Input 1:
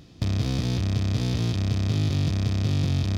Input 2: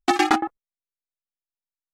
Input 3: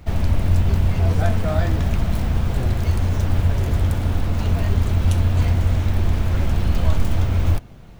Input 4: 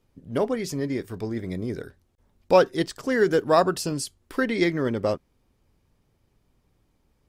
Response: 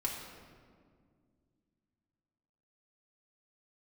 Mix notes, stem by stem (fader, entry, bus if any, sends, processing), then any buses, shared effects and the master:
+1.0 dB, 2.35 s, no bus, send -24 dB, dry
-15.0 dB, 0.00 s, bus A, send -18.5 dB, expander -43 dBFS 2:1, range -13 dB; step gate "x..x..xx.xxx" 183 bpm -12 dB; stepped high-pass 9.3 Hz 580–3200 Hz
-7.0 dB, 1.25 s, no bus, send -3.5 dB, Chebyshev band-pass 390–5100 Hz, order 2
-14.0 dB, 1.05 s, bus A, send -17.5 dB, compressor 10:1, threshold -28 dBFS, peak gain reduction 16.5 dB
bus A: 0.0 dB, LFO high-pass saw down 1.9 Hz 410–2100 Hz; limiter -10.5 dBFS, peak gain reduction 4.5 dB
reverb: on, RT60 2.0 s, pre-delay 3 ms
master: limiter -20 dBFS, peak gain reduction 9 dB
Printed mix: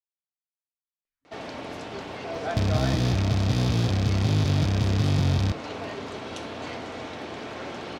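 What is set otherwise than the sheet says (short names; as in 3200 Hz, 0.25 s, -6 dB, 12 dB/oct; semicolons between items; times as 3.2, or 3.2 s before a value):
stem 2: muted; stem 4 -14.0 dB -> -22.5 dB; master: missing limiter -20 dBFS, peak gain reduction 9 dB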